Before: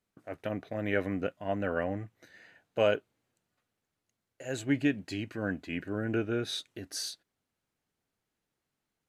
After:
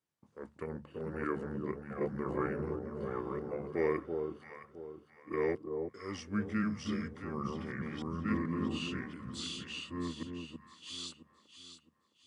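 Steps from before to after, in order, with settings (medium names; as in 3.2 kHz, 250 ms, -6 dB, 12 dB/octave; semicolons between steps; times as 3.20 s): chunks repeated in reverse 689 ms, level -1 dB; high-pass 110 Hz; hum notches 50/100/150/200/250/300 Hz; on a send: echo whose repeats swap between lows and highs 246 ms, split 1.2 kHz, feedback 56%, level -5 dB; on the sum: speed mistake 45 rpm record played at 33 rpm; trim -6 dB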